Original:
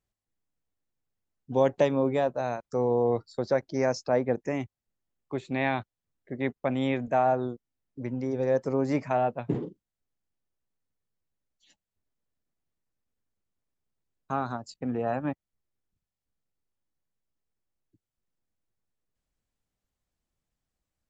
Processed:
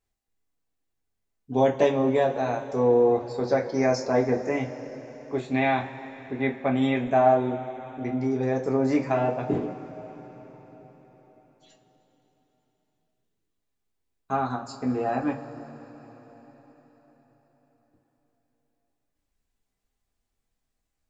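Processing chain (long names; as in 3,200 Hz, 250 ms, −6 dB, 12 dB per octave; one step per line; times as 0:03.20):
coupled-rooms reverb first 0.23 s, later 4.8 s, from −21 dB, DRR −1.5 dB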